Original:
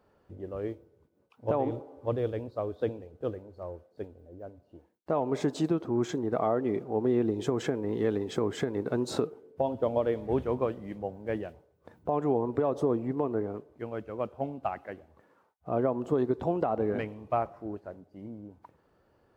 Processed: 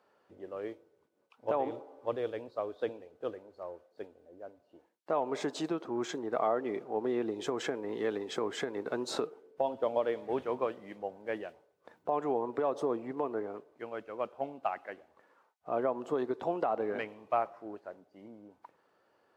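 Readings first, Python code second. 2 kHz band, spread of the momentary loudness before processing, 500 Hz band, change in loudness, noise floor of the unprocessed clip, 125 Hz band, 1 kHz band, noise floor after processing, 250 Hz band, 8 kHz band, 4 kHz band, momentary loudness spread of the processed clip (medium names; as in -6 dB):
+1.0 dB, 16 LU, -3.5 dB, -4.0 dB, -68 dBFS, -15.5 dB, -0.5 dB, -72 dBFS, -7.5 dB, -0.5 dB, +1.0 dB, 16 LU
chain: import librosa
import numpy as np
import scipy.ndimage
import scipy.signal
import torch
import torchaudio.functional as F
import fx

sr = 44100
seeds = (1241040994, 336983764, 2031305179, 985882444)

y = fx.weighting(x, sr, curve='A')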